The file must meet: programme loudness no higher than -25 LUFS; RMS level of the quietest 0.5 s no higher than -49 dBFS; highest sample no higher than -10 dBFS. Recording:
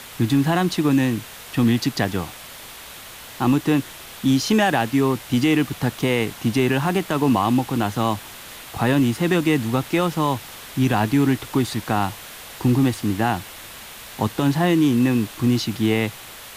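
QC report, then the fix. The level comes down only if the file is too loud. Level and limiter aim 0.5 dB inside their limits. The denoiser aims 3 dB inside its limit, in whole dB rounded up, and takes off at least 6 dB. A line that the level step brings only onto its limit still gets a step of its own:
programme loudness -21.0 LUFS: fail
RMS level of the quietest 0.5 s -39 dBFS: fail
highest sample -7.5 dBFS: fail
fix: denoiser 9 dB, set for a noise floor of -39 dBFS; gain -4.5 dB

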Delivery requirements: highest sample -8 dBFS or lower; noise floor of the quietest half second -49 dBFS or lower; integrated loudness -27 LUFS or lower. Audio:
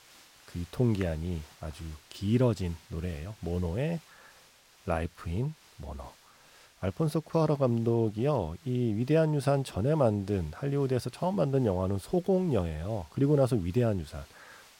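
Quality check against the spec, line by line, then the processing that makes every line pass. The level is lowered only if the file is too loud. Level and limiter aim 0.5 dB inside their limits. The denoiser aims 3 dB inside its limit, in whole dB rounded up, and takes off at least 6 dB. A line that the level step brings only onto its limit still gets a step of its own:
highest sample -14.0 dBFS: OK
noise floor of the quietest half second -59 dBFS: OK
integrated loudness -30.0 LUFS: OK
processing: none

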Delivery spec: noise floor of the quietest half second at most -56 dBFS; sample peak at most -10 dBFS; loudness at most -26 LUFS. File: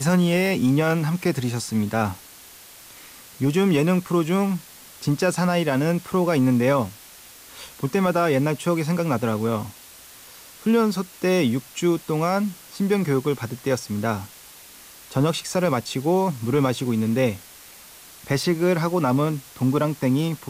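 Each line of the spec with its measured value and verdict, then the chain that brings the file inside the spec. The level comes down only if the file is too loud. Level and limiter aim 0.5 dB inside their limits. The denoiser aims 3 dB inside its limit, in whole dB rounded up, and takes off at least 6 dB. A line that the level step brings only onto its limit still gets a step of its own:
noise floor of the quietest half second -45 dBFS: fail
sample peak -9.0 dBFS: fail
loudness -22.5 LUFS: fail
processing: denoiser 10 dB, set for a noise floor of -45 dBFS; gain -4 dB

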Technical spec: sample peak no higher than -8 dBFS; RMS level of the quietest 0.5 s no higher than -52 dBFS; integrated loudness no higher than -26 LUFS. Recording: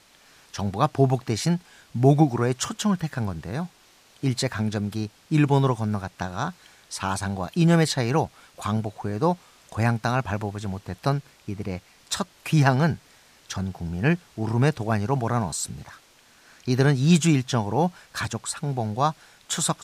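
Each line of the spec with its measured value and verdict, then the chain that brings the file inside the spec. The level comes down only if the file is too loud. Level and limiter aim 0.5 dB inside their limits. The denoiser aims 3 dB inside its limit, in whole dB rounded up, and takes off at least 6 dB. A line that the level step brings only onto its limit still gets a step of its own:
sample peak -4.5 dBFS: fail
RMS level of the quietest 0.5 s -56 dBFS: OK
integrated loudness -25.0 LUFS: fail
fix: gain -1.5 dB; limiter -8.5 dBFS

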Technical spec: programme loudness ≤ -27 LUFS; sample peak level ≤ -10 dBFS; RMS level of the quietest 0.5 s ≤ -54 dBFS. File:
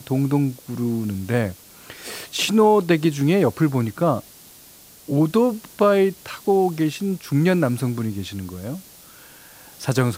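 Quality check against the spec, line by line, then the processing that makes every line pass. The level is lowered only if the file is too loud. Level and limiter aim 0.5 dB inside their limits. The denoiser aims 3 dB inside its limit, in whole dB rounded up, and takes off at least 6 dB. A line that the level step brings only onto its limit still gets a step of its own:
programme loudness -21.0 LUFS: fail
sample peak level -5.0 dBFS: fail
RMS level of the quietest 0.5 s -47 dBFS: fail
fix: denoiser 6 dB, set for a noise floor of -47 dBFS; gain -6.5 dB

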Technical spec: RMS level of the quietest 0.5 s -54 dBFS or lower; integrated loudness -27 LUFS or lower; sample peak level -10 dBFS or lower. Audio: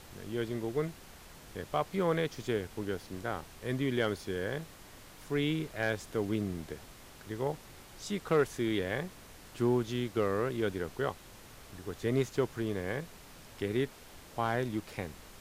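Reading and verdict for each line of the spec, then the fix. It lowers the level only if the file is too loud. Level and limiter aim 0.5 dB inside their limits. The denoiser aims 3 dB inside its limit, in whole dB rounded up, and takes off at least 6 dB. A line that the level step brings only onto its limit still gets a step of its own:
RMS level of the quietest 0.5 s -52 dBFS: fail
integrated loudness -34.5 LUFS: OK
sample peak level -18.0 dBFS: OK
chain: denoiser 6 dB, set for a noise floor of -52 dBFS

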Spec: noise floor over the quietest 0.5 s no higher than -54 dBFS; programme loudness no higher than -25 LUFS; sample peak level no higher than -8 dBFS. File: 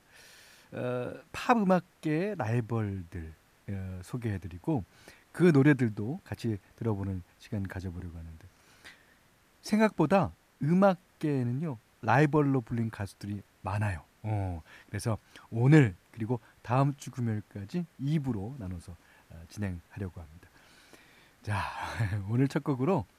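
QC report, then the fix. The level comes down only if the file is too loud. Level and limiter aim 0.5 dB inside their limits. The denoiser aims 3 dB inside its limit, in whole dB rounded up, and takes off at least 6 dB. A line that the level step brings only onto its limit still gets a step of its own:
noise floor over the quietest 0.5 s -64 dBFS: OK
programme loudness -30.5 LUFS: OK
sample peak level -10.0 dBFS: OK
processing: none

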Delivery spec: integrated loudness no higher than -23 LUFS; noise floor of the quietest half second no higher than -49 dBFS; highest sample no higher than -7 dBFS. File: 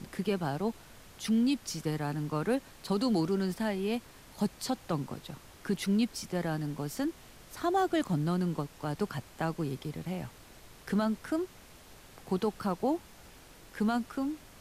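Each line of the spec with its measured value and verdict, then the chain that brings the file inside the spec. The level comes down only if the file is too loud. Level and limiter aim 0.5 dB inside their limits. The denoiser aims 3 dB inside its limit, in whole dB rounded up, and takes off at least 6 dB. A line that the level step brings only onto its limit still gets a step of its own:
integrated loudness -33.0 LUFS: OK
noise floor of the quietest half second -53 dBFS: OK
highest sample -18.5 dBFS: OK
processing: none

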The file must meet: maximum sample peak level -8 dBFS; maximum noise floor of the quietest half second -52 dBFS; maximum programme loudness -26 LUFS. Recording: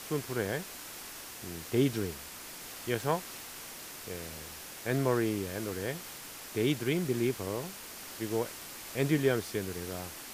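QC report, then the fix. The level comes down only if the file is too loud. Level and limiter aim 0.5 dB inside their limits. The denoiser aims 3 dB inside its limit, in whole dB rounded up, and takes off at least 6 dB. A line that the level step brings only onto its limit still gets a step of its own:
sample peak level -14.0 dBFS: OK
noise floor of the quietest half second -45 dBFS: fail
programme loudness -34.0 LUFS: OK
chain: denoiser 10 dB, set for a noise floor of -45 dBFS

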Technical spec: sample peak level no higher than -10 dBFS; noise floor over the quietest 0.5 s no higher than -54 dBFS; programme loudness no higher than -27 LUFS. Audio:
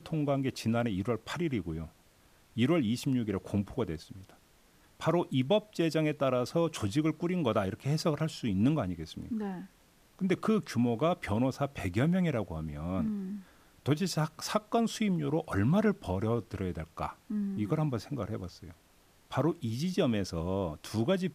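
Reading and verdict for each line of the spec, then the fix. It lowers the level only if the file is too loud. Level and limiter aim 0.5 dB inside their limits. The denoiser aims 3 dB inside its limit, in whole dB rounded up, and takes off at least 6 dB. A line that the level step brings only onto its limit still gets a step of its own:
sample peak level -14.0 dBFS: OK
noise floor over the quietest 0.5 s -63 dBFS: OK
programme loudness -32.0 LUFS: OK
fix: none

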